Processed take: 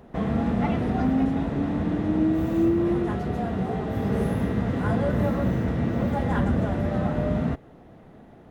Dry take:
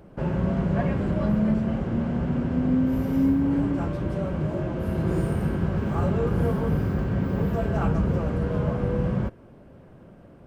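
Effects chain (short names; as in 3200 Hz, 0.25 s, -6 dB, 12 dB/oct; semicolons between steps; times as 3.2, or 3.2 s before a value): varispeed +23%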